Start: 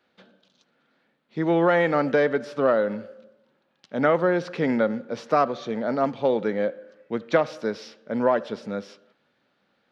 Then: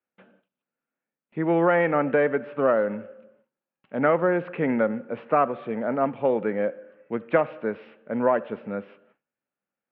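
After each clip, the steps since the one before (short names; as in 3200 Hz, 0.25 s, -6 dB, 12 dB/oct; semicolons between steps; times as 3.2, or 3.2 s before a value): elliptic low-pass 2700 Hz, stop band 80 dB; gate with hold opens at -52 dBFS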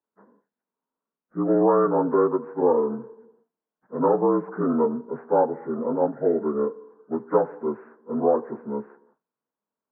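inharmonic rescaling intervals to 77%; low-pass opened by the level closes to 1700 Hz, open at -19 dBFS; gain +2 dB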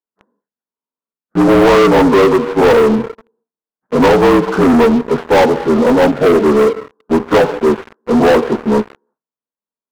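sample leveller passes 5; gain +1.5 dB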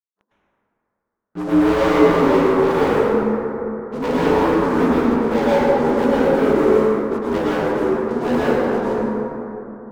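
plate-style reverb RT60 3.3 s, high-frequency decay 0.35×, pre-delay 95 ms, DRR -8.5 dB; gain -15.5 dB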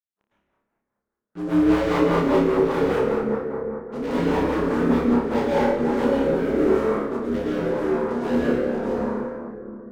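rotary speaker horn 5 Hz, later 0.9 Hz, at 5.23; on a send: flutter echo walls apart 5 m, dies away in 0.34 s; on the sum: gain -4 dB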